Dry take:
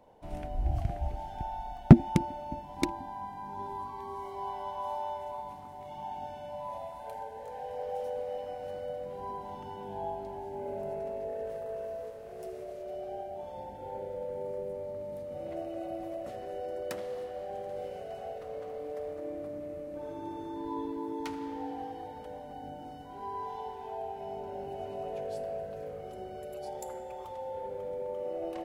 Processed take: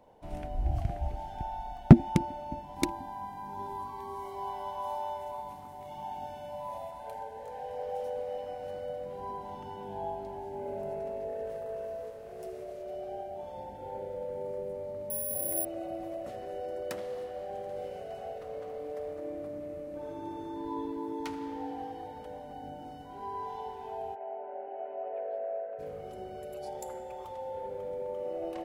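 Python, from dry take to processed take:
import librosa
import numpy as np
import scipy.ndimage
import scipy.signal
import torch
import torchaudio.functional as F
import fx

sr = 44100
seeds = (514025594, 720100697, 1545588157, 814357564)

y = fx.high_shelf(x, sr, hz=8900.0, db=8.5, at=(2.76, 6.91))
y = fx.resample_bad(y, sr, factor=4, down='filtered', up='zero_stuff', at=(15.1, 15.65))
y = fx.cabinet(y, sr, low_hz=370.0, low_slope=24, high_hz=2100.0, hz=(410.0, 610.0, 1100.0), db=(-4, 4, -5), at=(24.14, 25.78), fade=0.02)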